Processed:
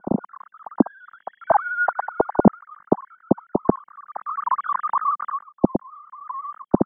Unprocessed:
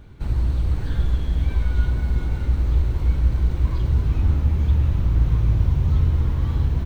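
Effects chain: formants replaced by sine waves; inverse Chebyshev low-pass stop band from 2.3 kHz, stop band 50 dB; peaking EQ 200 Hz +11.5 dB 1.1 oct, from 1.51 s -2 dB, from 2.80 s +11 dB; level rider gain up to 16 dB; trim -1 dB

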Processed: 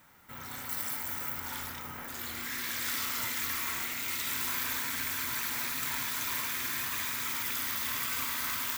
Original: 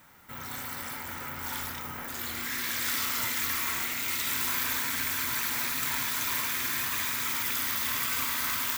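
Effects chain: 0.69–1.40 s: treble shelf 5.1 kHz +9 dB; trim -3.5 dB

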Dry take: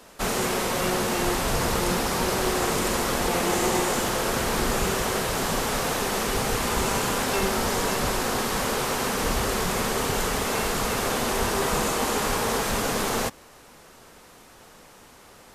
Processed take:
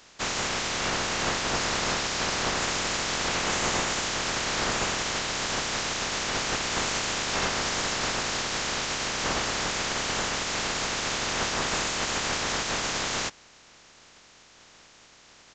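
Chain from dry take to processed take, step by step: spectral peaks clipped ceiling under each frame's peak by 17 dB; resampled via 16 kHz; trim -2.5 dB

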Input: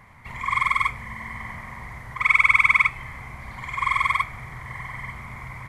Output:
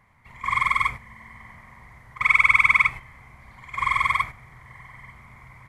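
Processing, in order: gate -30 dBFS, range -10 dB

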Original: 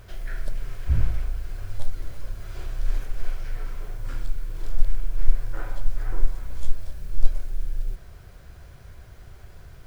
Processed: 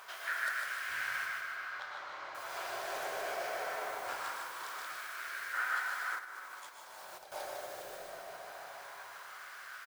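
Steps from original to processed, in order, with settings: 1.26–2.35 s: distance through air 180 m; feedback delay 152 ms, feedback 49%, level -5.5 dB; plate-style reverb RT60 1.1 s, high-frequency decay 0.5×, pre-delay 100 ms, DRR 0.5 dB; 6.14–7.32 s: compression 4:1, threshold -19 dBFS, peak gain reduction 13 dB; LFO high-pass sine 0.22 Hz 650–1500 Hz; trim +2 dB

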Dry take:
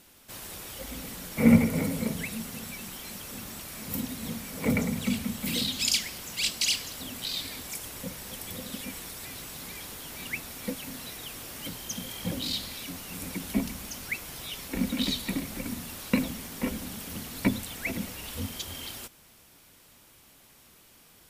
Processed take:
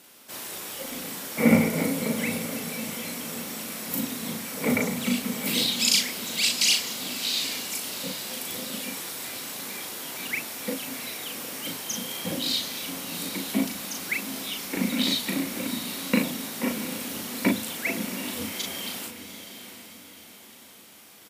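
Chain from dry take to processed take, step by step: high-pass 220 Hz 12 dB/octave; doubling 37 ms -3.5 dB; echo that smears into a reverb 756 ms, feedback 45%, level -10.5 dB; trim +3.5 dB

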